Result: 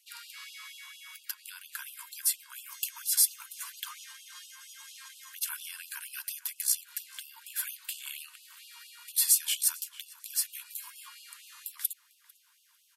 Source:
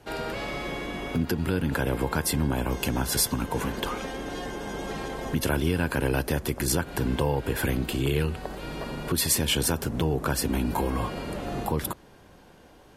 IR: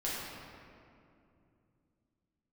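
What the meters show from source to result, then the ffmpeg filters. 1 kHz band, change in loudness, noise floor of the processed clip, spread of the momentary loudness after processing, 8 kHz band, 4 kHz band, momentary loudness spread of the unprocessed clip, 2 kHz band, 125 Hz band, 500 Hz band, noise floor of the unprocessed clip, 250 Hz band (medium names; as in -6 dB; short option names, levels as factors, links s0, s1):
-21.0 dB, -3.0 dB, -66 dBFS, 22 LU, +1.5 dB, -5.0 dB, 10 LU, -12.0 dB, under -40 dB, under -40 dB, -53 dBFS, under -40 dB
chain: -filter_complex "[0:a]highpass=f=670:t=q:w=4.8,aderivative,asplit=2[s0][s1];[s1]adelay=448,lowpass=f=2900:p=1,volume=0.15,asplit=2[s2][s3];[s3]adelay=448,lowpass=f=2900:p=1,volume=0.51,asplit=2[s4][s5];[s5]adelay=448,lowpass=f=2900:p=1,volume=0.51,asplit=2[s6][s7];[s7]adelay=448,lowpass=f=2900:p=1,volume=0.51,asplit=2[s8][s9];[s9]adelay=448,lowpass=f=2900:p=1,volume=0.51[s10];[s0][s2][s4][s6][s8][s10]amix=inputs=6:normalize=0,afftfilt=real='re*gte(b*sr/1024,870*pow(2600/870,0.5+0.5*sin(2*PI*4.3*pts/sr)))':imag='im*gte(b*sr/1024,870*pow(2600/870,0.5+0.5*sin(2*PI*4.3*pts/sr)))':win_size=1024:overlap=0.75"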